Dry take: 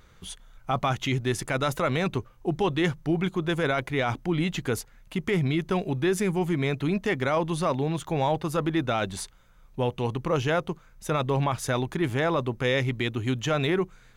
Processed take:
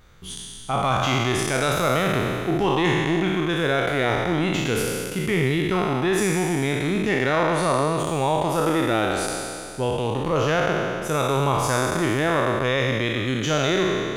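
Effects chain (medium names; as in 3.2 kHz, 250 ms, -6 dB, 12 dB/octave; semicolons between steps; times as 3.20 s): spectral sustain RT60 2.40 s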